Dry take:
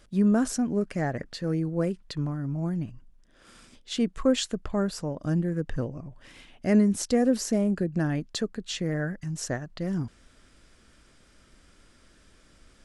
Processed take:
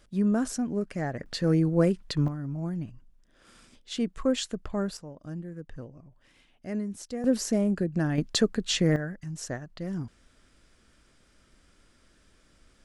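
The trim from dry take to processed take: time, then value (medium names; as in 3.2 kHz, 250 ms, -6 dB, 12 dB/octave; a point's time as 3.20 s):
-3 dB
from 1.26 s +4.5 dB
from 2.28 s -3 dB
from 4.97 s -11.5 dB
from 7.24 s -0.5 dB
from 8.18 s +6 dB
from 8.96 s -4 dB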